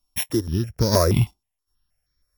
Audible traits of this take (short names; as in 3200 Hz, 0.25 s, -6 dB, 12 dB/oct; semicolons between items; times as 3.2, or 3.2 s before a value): a buzz of ramps at a fixed pitch in blocks of 8 samples; random-step tremolo 4.3 Hz, depth 70%; notches that jump at a steady rate 6.3 Hz 500–2800 Hz